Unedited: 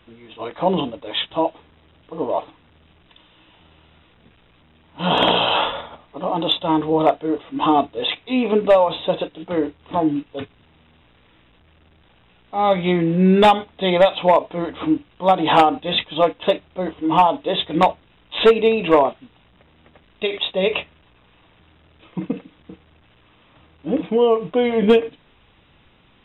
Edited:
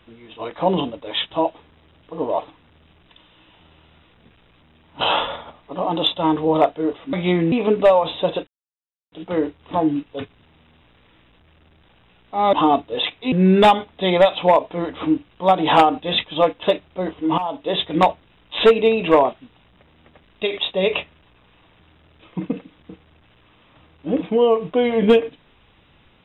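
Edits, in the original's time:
0:05.01–0:05.46: remove
0:07.58–0:08.37: swap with 0:12.73–0:13.12
0:09.32: splice in silence 0.65 s
0:17.18–0:17.54: fade in, from −16.5 dB

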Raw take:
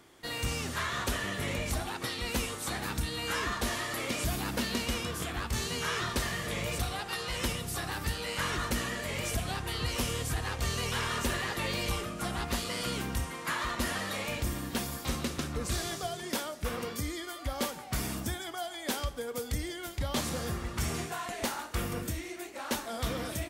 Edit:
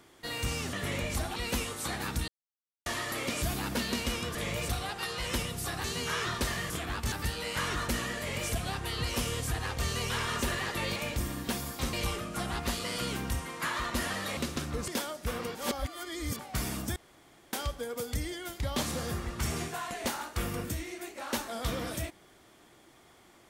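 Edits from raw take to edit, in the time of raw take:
0:00.73–0:01.29: remove
0:01.92–0:02.18: remove
0:03.10–0:03.68: silence
0:05.17–0:05.59: swap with 0:06.45–0:07.94
0:14.22–0:15.19: move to 0:11.78
0:15.70–0:16.26: remove
0:16.93–0:17.77: reverse
0:18.34–0:18.91: fill with room tone

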